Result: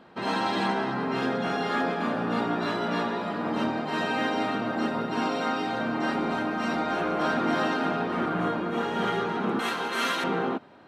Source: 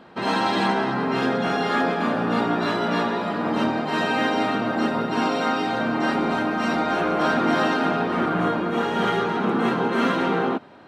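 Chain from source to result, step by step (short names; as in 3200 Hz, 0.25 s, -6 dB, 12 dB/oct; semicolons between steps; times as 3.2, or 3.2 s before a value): 9.59–10.24 tilt +4.5 dB/oct; gain -5 dB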